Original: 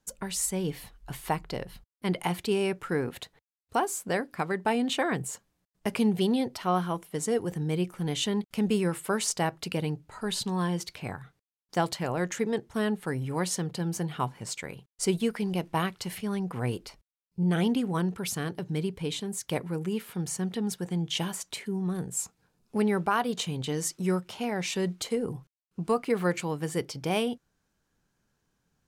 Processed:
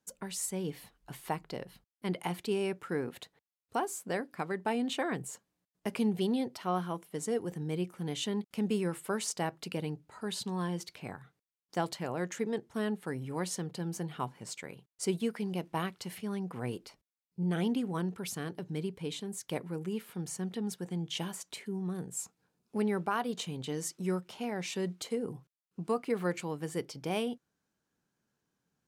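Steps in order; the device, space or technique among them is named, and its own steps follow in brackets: filter by subtraction (in parallel: LPF 230 Hz 12 dB/oct + phase invert); on the sum: gain -6.5 dB

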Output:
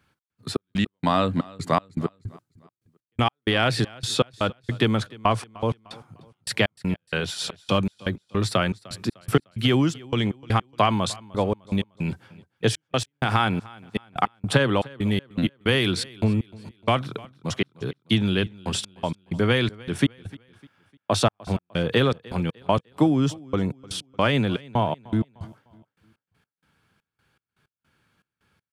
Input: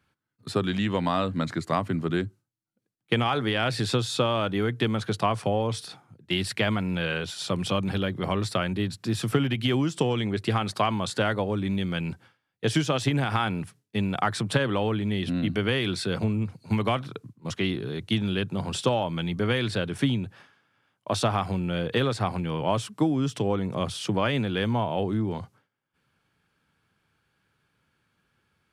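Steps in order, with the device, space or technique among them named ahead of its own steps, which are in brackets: 14.88–15.92 high shelf 8700 Hz +8.5 dB; trance gate with a delay (step gate "xx..xx..x..xx" 160 bpm -60 dB; feedback echo 0.302 s, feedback 40%, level -22 dB); gain +4.5 dB

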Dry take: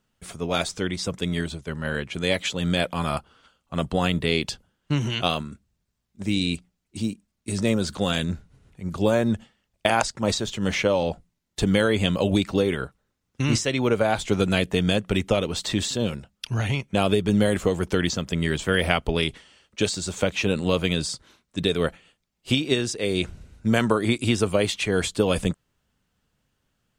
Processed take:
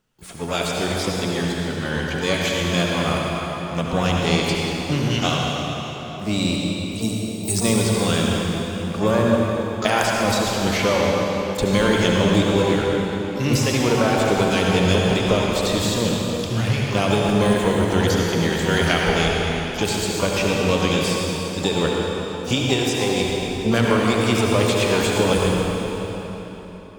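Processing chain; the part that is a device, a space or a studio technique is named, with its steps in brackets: 7.02–7.82 tone controls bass +3 dB, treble +12 dB; shimmer-style reverb (harmoniser +12 st -10 dB; reverb RT60 4.1 s, pre-delay 62 ms, DRR -2.5 dB)

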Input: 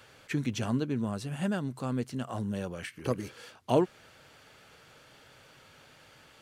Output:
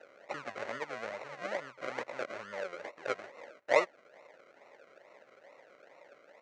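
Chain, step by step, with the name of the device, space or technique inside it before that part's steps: dynamic EQ 310 Hz, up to -7 dB, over -44 dBFS, Q 0.89; comb 2 ms, depth 33%; 1.84–2.29 band shelf 2100 Hz +13.5 dB 1.2 oct; circuit-bent sampling toy (decimation with a swept rate 39×, swing 60% 2.3 Hz; speaker cabinet 550–5700 Hz, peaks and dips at 570 Hz +9 dB, 1400 Hz +4 dB, 2000 Hz +7 dB, 3400 Hz -7 dB, 5000 Hz -7 dB)

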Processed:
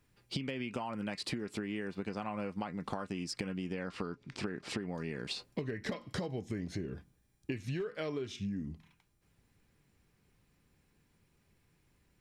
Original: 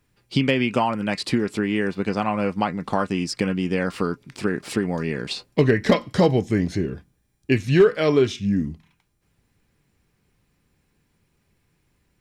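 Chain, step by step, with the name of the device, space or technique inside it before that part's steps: 3.73–4.95 LPF 6300 Hz 12 dB/oct; serial compression, leveller first (compressor 2:1, threshold -20 dBFS, peak gain reduction 6 dB; compressor 6:1, threshold -31 dBFS, peak gain reduction 14.5 dB); gain -4 dB

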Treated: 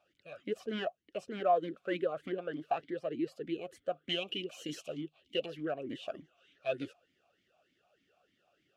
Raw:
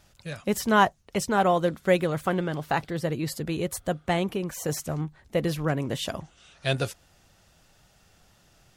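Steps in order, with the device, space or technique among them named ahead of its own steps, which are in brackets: 4.09–5.46 resonant high shelf 2200 Hz +9.5 dB, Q 3; talk box (tube stage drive 17 dB, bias 0.35; vowel sweep a-i 3.3 Hz); gain +2.5 dB

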